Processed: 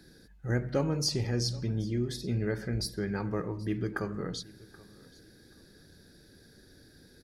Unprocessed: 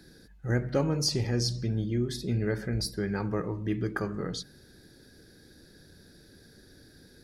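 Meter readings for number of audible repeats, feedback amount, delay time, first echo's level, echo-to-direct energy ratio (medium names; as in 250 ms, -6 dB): 2, 27%, 780 ms, -22.0 dB, -21.5 dB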